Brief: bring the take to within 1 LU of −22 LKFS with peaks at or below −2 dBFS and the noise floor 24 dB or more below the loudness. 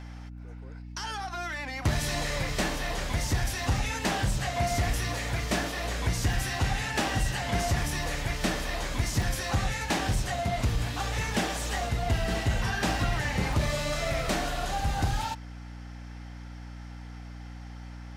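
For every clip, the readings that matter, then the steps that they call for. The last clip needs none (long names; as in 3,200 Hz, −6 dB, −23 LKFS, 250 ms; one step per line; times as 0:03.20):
number of dropouts 7; longest dropout 1.9 ms; mains hum 60 Hz; hum harmonics up to 300 Hz; level of the hum −39 dBFS; integrated loudness −29.5 LKFS; sample peak −17.0 dBFS; target loudness −22.0 LKFS
→ repair the gap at 0:03.77/0:06.33/0:07.10/0:08.53/0:09.22/0:09.99/0:13.53, 1.9 ms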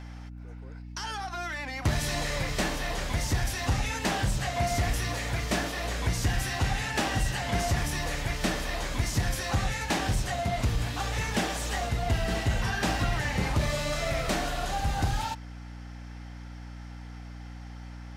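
number of dropouts 0; mains hum 60 Hz; hum harmonics up to 300 Hz; level of the hum −39 dBFS
→ hum removal 60 Hz, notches 5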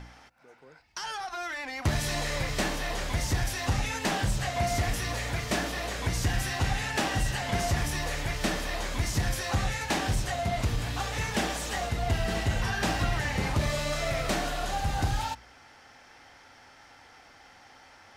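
mains hum none found; integrated loudness −30.0 LKFS; sample peak −17.0 dBFS; target loudness −22.0 LKFS
→ level +8 dB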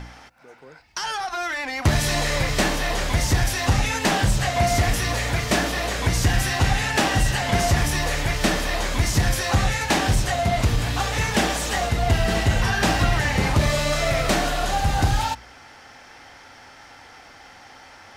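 integrated loudness −22.0 LKFS; sample peak −9.0 dBFS; background noise floor −47 dBFS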